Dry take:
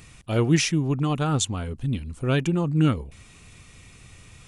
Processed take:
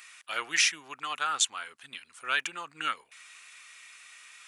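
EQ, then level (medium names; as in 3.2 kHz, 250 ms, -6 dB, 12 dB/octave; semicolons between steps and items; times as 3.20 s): resonant high-pass 1.5 kHz, resonance Q 1.7; 0.0 dB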